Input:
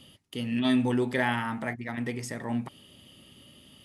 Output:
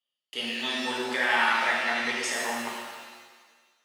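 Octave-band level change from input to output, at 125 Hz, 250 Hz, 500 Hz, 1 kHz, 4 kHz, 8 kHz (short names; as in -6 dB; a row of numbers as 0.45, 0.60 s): under -20 dB, -9.5 dB, -1.0 dB, +6.5 dB, +9.0 dB, +10.0 dB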